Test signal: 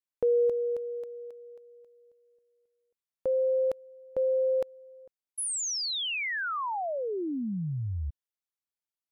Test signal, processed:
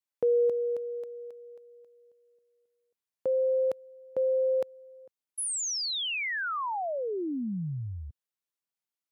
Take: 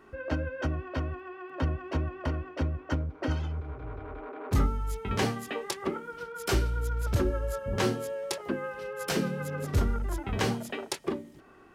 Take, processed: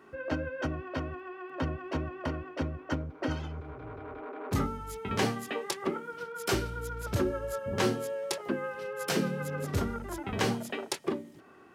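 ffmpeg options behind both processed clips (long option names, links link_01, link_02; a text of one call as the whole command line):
ffmpeg -i in.wav -af "highpass=110" out.wav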